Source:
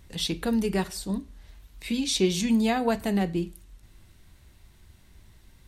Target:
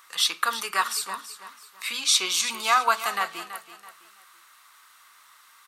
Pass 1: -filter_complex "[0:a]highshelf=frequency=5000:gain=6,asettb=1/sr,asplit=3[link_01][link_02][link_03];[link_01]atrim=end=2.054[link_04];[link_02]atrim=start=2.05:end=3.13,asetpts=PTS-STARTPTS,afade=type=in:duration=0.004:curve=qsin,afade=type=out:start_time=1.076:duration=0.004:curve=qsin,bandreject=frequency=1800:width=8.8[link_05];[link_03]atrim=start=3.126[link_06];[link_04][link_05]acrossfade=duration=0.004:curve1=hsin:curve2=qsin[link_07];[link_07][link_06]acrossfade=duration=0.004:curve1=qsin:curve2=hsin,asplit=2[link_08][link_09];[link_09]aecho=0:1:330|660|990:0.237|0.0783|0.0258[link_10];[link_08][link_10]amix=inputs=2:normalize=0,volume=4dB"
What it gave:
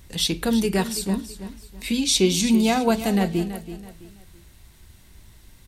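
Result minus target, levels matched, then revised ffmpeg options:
1,000 Hz band −7.0 dB
-filter_complex "[0:a]highpass=frequency=1200:width_type=q:width=8.7,highshelf=frequency=5000:gain=6,asettb=1/sr,asplit=3[link_01][link_02][link_03];[link_01]atrim=end=2.054[link_04];[link_02]atrim=start=2.05:end=3.13,asetpts=PTS-STARTPTS,afade=type=in:duration=0.004:curve=qsin,afade=type=out:start_time=1.076:duration=0.004:curve=qsin,bandreject=frequency=1800:width=8.8[link_05];[link_03]atrim=start=3.126[link_06];[link_04][link_05]acrossfade=duration=0.004:curve1=hsin:curve2=qsin[link_07];[link_07][link_06]acrossfade=duration=0.004:curve1=qsin:curve2=hsin,asplit=2[link_08][link_09];[link_09]aecho=0:1:330|660|990:0.237|0.0783|0.0258[link_10];[link_08][link_10]amix=inputs=2:normalize=0,volume=4dB"

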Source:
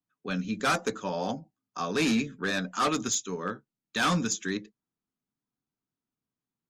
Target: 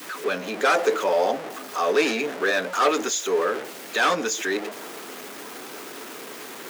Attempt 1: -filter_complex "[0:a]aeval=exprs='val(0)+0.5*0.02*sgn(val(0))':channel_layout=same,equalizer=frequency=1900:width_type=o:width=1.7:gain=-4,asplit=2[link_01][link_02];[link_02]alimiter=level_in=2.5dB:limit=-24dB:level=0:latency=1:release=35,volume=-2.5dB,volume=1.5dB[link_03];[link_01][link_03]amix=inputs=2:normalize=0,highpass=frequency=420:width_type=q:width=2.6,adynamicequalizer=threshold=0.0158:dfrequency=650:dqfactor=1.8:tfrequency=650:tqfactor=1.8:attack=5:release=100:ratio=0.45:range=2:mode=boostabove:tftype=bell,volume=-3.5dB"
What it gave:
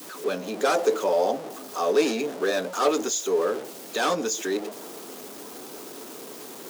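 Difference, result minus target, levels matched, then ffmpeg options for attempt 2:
2,000 Hz band −6.0 dB
-filter_complex "[0:a]aeval=exprs='val(0)+0.5*0.02*sgn(val(0))':channel_layout=same,equalizer=frequency=1900:width_type=o:width=1.7:gain=6.5,asplit=2[link_01][link_02];[link_02]alimiter=level_in=2.5dB:limit=-24dB:level=0:latency=1:release=35,volume=-2.5dB,volume=1.5dB[link_03];[link_01][link_03]amix=inputs=2:normalize=0,highpass=frequency=420:width_type=q:width=2.6,adynamicequalizer=threshold=0.0158:dfrequency=650:dqfactor=1.8:tfrequency=650:tqfactor=1.8:attack=5:release=100:ratio=0.45:range=2:mode=boostabove:tftype=bell,volume=-3.5dB"

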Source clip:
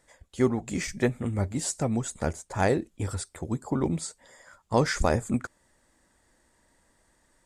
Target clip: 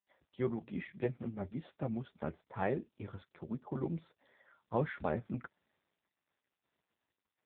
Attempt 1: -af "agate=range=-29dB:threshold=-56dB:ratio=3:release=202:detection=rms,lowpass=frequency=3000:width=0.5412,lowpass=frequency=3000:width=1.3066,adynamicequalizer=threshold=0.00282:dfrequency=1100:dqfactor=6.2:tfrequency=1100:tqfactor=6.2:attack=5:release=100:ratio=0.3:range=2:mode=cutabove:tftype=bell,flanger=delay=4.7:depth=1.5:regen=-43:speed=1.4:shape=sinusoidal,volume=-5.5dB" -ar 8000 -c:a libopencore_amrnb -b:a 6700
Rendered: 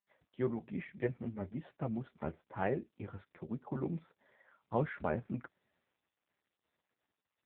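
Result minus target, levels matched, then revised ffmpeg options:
4,000 Hz band −3.0 dB
-af "agate=range=-29dB:threshold=-56dB:ratio=3:release=202:detection=rms,adynamicequalizer=threshold=0.00282:dfrequency=1100:dqfactor=6.2:tfrequency=1100:tqfactor=6.2:attack=5:release=100:ratio=0.3:range=2:mode=cutabove:tftype=bell,flanger=delay=4.7:depth=1.5:regen=-43:speed=1.4:shape=sinusoidal,volume=-5.5dB" -ar 8000 -c:a libopencore_amrnb -b:a 6700

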